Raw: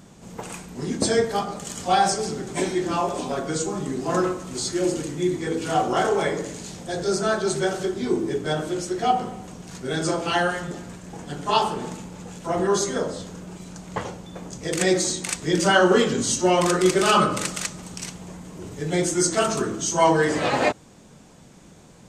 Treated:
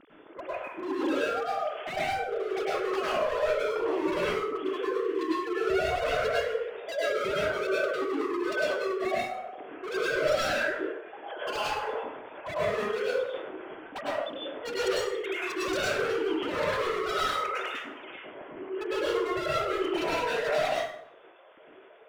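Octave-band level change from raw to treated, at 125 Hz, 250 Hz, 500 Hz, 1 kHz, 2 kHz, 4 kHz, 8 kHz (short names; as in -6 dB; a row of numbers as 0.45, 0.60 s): -16.5, -9.5, -4.0, -7.5, -3.0, -7.0, -19.0 dB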